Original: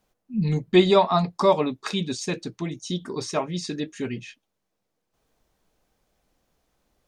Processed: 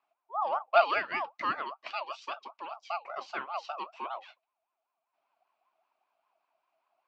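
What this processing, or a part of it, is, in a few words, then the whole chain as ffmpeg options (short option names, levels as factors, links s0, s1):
voice changer toy: -filter_complex "[0:a]aeval=exprs='val(0)*sin(2*PI*850*n/s+850*0.25/5.1*sin(2*PI*5.1*n/s))':c=same,highpass=450,equalizer=f=470:t=q:w=4:g=-9,equalizer=f=670:t=q:w=4:g=8,equalizer=f=1100:t=q:w=4:g=4,equalizer=f=1800:t=q:w=4:g=-7,equalizer=f=2500:t=q:w=4:g=8,equalizer=f=3600:t=q:w=4:g=-4,lowpass=f=4100:w=0.5412,lowpass=f=4100:w=1.3066,asettb=1/sr,asplit=3[s0][s1][s2];[s0]atrim=end=0.854[s3];[s1]atrim=start=0.85:end=2.72,asetpts=PTS-STARTPTS,afade=t=in:d=0.004:c=qsin,afade=t=out:st=1.866:d=0.004:c=qsin,equalizer=f=540:w=0.66:g=-5[s4];[s2]atrim=start=2.716[s5];[s3][s4]acrossfade=d=0.004:c1=hsin:c2=qsin[s6];[s6][s5]acrossfade=d=0.004:c1=qsin:c2=hsin,volume=0.473"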